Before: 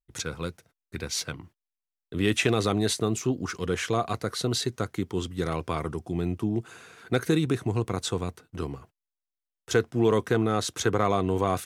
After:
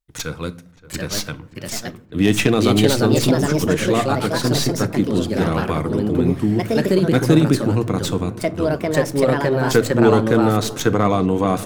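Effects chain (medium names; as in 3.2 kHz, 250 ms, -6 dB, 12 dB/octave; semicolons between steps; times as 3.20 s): tracing distortion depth 0.044 ms; band-stop 390 Hz, Q 12; de-hum 56.79 Hz, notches 3; dynamic bell 210 Hz, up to +6 dB, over -37 dBFS, Q 0.8; simulated room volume 600 m³, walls furnished, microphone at 0.45 m; ever faster or slower copies 773 ms, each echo +3 st, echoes 2; filtered feedback delay 575 ms, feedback 71%, low-pass 1.3 kHz, level -18 dB; trim +5 dB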